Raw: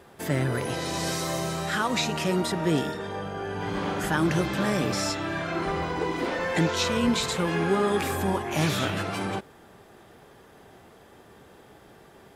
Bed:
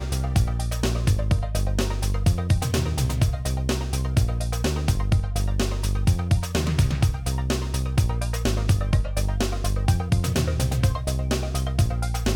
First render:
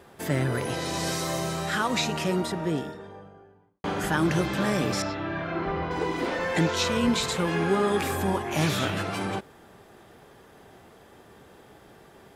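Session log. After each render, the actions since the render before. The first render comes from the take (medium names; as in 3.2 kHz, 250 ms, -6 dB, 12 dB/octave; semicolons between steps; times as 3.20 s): 2.00–3.84 s: studio fade out; 5.02–5.91 s: distance through air 260 m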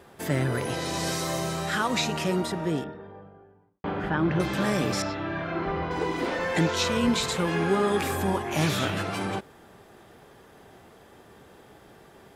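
2.84–4.40 s: distance through air 370 m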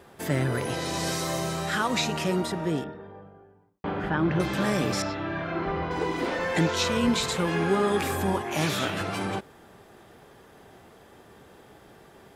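8.41–9.01 s: high-pass 170 Hz 6 dB/octave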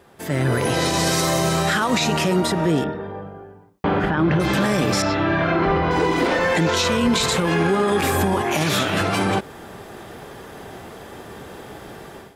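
level rider gain up to 14 dB; peak limiter -10.5 dBFS, peak gain reduction 8.5 dB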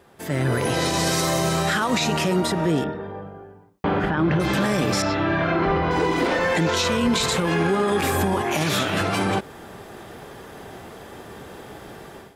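trim -2 dB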